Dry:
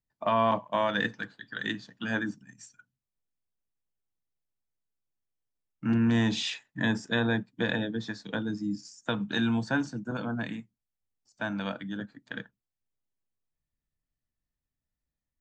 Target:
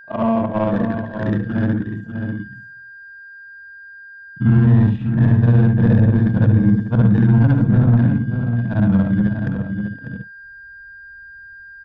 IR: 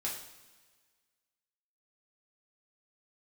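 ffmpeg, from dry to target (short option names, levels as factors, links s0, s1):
-filter_complex "[0:a]afftfilt=real='re':imag='-im':win_size=8192:overlap=0.75,highpass=f=42:w=0.5412,highpass=f=42:w=1.3066,equalizer=f=2100:w=4.9:g=-4.5,bandreject=f=5600:w=13,aeval=exprs='val(0)+0.00447*sin(2*PI*1600*n/s)':c=same,acrossover=split=460|2700[s0][s1][s2];[s0]acompressor=threshold=0.0126:ratio=4[s3];[s1]acompressor=threshold=0.00501:ratio=4[s4];[s2]acompressor=threshold=0.00126:ratio=4[s5];[s3][s4][s5]amix=inputs=3:normalize=0,atempo=1.3,aecho=1:1:595:0.447,adynamicsmooth=sensitivity=2:basefreq=650,asubboost=boost=9:cutoff=110,alimiter=level_in=22.4:limit=0.891:release=50:level=0:latency=1,volume=0.631"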